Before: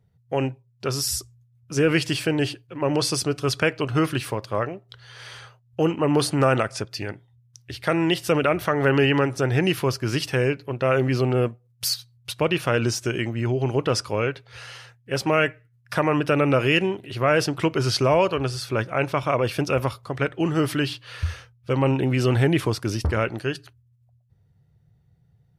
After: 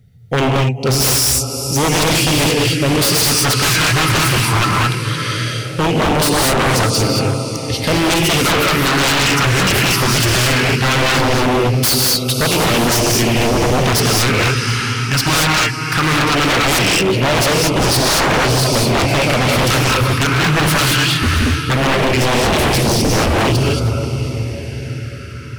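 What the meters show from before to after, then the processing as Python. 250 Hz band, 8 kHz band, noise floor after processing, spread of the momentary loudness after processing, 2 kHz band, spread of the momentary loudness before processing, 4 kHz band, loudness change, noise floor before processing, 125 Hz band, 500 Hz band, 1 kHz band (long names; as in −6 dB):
+7.5 dB, +17.0 dB, −24 dBFS, 6 LU, +12.0 dB, 11 LU, +15.0 dB, +9.5 dB, −62 dBFS, +9.5 dB, +5.5 dB, +11.5 dB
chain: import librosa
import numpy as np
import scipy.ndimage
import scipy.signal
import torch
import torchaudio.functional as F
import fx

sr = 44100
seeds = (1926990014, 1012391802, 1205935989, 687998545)

p1 = fx.peak_eq(x, sr, hz=320.0, db=-7.0, octaves=1.9)
p2 = fx.rider(p1, sr, range_db=3, speed_s=0.5)
p3 = p1 + (p2 * librosa.db_to_amplitude(3.0))
p4 = fx.small_body(p3, sr, hz=(240.0, 1300.0, 2100.0), ring_ms=45, db=8)
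p5 = p4 + fx.echo_diffused(p4, sr, ms=532, feedback_pct=58, wet_db=-12.5, dry=0)
p6 = fx.filter_lfo_notch(p5, sr, shape='sine', hz=0.18, low_hz=520.0, high_hz=1800.0, q=0.7)
p7 = fx.rev_gated(p6, sr, seeds[0], gate_ms=250, shape='rising', drr_db=-1.0)
p8 = 10.0 ** (-16.0 / 20.0) * (np.abs((p7 / 10.0 ** (-16.0 / 20.0) + 3.0) % 4.0 - 2.0) - 1.0)
y = p8 * librosa.db_to_amplitude(7.0)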